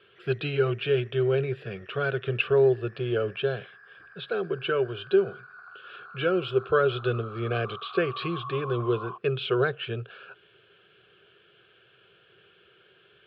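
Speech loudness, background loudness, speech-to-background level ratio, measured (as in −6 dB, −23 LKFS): −27.5 LKFS, −43.5 LKFS, 16.0 dB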